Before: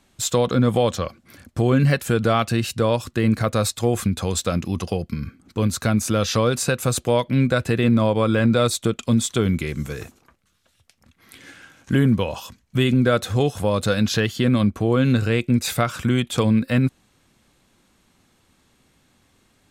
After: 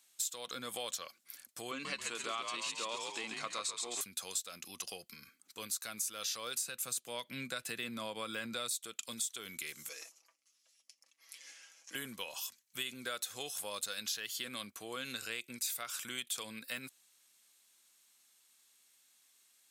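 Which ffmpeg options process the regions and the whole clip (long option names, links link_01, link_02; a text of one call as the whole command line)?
ffmpeg -i in.wav -filter_complex "[0:a]asettb=1/sr,asplit=3[link_01][link_02][link_03];[link_01]atrim=end=1.714[link_04];[link_02]atrim=start=1.71:end=4.01,asetpts=PTS-STARTPTS,afade=type=in:duration=0.004:curve=qsin,afade=type=out:start_time=2.296:duration=0.004:curve=qsin,highpass=200,equalizer=frequency=290:width_type=q:width=4:gain=7,equalizer=frequency=1100:width_type=q:width=4:gain=8,equalizer=frequency=1600:width_type=q:width=4:gain=-6,equalizer=frequency=2500:width_type=q:width=4:gain=3,equalizer=frequency=5300:width_type=q:width=4:gain=-4,lowpass=frequency=7300:width=0.5412,lowpass=frequency=7300:width=1.3066,asplit=7[link_05][link_06][link_07][link_08][link_09][link_10][link_11];[link_06]adelay=136,afreqshift=-74,volume=-4dB[link_12];[link_07]adelay=272,afreqshift=-148,volume=-10.4dB[link_13];[link_08]adelay=408,afreqshift=-222,volume=-16.8dB[link_14];[link_09]adelay=544,afreqshift=-296,volume=-23.1dB[link_15];[link_10]adelay=680,afreqshift=-370,volume=-29.5dB[link_16];[link_11]adelay=816,afreqshift=-444,volume=-35.9dB[link_17];[link_05][link_12][link_13][link_14][link_15][link_16][link_17]amix=inputs=7:normalize=0,atrim=end_sample=101430[link_18];[link_03]atrim=start=4.006[link_19];[link_04][link_18]acrossfade=duration=0.004:curve1=hsin:curve2=qsin[link_20];[link_20][link_19]acrossfade=duration=0.004:curve1=qsin:curve2=hsin,asettb=1/sr,asplit=3[link_21][link_22][link_23];[link_21]atrim=end=6.614[link_24];[link_22]atrim=start=6.61:end=8.76,asetpts=PTS-STARTPTS,afade=type=in:duration=0.004:curve=qsin,afade=type=out:start_time=2.146:duration=0.004:curve=qsin,highpass=130,bass=frequency=250:gain=10,treble=frequency=4000:gain=-2[link_25];[link_23]atrim=start=8.756[link_26];[link_24][link_25]acrossfade=duration=0.004:curve1=hsin:curve2=qsin[link_27];[link_27][link_26]acrossfade=duration=0.004:curve1=qsin:curve2=hsin,asettb=1/sr,asplit=3[link_28][link_29][link_30];[link_28]atrim=end=9.894[link_31];[link_29]atrim=start=9.89:end=11.95,asetpts=PTS-STARTPTS,afade=type=in:duration=0.004:curve=qsin,afade=type=out:start_time=2.056:duration=0.004:curve=qsin,aecho=1:1:6.1:0.61,atrim=end_sample=90846,aeval=exprs='val(0)+0.00126*(sin(2*PI*60*n/s)+sin(2*PI*2*60*n/s)/2+sin(2*PI*3*60*n/s)/3+sin(2*PI*4*60*n/s)/4+sin(2*PI*5*60*n/s)/5)':channel_layout=same,highpass=frequency=280:width=0.5412,highpass=frequency=280:width=1.3066,equalizer=frequency=380:width_type=q:width=4:gain=-9,equalizer=frequency=560:width_type=q:width=4:gain=7,equalizer=frequency=1500:width_type=q:width=4:gain=-8,equalizer=frequency=3700:width_type=q:width=4:gain=-7,equalizer=frequency=5400:width_type=q:width=4:gain=4,equalizer=frequency=8500:width_type=q:width=4:gain=-9,lowpass=frequency=9800:width=0.5412,lowpass=frequency=9800:width=1.3066[link_32];[link_30]atrim=start=11.946[link_33];[link_31][link_32]acrossfade=duration=0.004:curve1=hsin:curve2=qsin[link_34];[link_34][link_33]acrossfade=duration=0.004:curve1=qsin:curve2=hsin,highpass=frequency=150:poles=1,aderivative,acompressor=threshold=-35dB:ratio=6" out.wav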